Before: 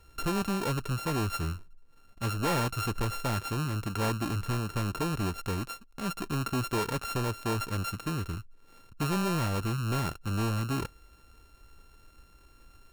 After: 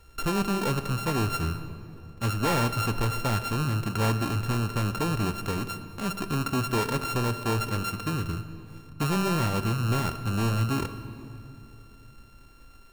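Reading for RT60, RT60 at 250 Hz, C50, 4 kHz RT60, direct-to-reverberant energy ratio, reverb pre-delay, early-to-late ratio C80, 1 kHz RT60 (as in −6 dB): 3.0 s, 3.6 s, 11.0 dB, 2.0 s, 10.0 dB, 3 ms, 12.0 dB, 2.8 s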